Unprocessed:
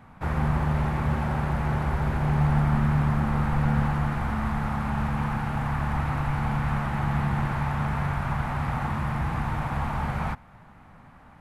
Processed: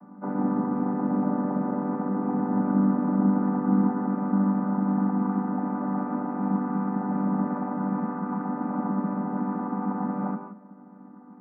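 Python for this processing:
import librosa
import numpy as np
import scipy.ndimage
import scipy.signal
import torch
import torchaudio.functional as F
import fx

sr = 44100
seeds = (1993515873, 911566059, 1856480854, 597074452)

y = fx.chord_vocoder(x, sr, chord='major triad', root=55)
y = scipy.signal.sosfilt(scipy.signal.butter(4, 1300.0, 'lowpass', fs=sr, output='sos'), y)
y = fx.peak_eq(y, sr, hz=210.0, db=6.5, octaves=0.25)
y = fx.rev_gated(y, sr, seeds[0], gate_ms=200, shape='rising', drr_db=6.5)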